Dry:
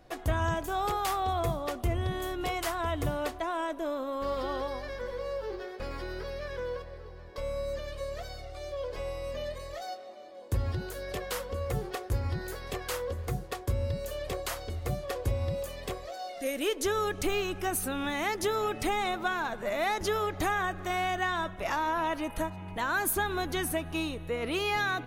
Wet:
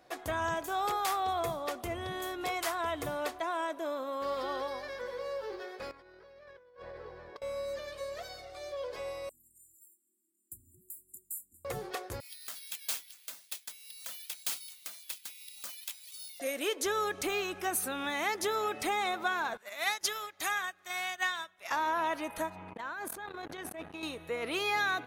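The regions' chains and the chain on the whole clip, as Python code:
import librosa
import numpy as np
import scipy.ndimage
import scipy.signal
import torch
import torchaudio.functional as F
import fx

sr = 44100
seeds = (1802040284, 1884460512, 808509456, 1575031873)

y = fx.chain(x, sr, fx.lowpass(hz=2100.0, slope=6),
    fx.over_compress(threshold_db=-44.0, ratio=-0.5), at=(5.91, 7.42))
y = fx.chain(y, sr, fx.brickwall_bandstop(low_hz=370.0, high_hz=7000.0),
    fx.pre_emphasis(coefficient=0.9), at=(9.29, 11.65))
y = fx.chain(y, sr, fx.steep_highpass(hz=2500.0, slope=36),
    fx.resample_bad(factor=3, down='none', up='zero_stuff'), at=(12.2, 16.4))
y = fx.chain(y, sr, fx.tilt_shelf(db=-8.5, hz=1300.0),
    fx.upward_expand(threshold_db=-39.0, expansion=2.5), at=(19.57, 21.71))
y = fx.chain(y, sr, fx.lowpass(hz=2800.0, slope=6),
    fx.over_compress(threshold_db=-36.0, ratio=-1.0),
    fx.transformer_sat(knee_hz=310.0), at=(22.55, 24.03))
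y = fx.highpass(y, sr, hz=130.0, slope=6)
y = fx.low_shelf(y, sr, hz=280.0, db=-10.5)
y = fx.notch(y, sr, hz=2900.0, q=23.0)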